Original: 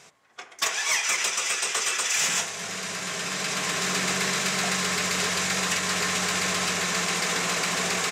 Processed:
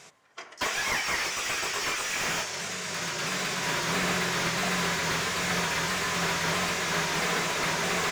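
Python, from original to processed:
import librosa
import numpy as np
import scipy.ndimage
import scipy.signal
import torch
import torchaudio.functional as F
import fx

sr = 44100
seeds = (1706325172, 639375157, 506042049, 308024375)

y = fx.pitch_ramps(x, sr, semitones=-2.0, every_ms=653)
y = fx.slew_limit(y, sr, full_power_hz=120.0)
y = y * 10.0 ** (1.0 / 20.0)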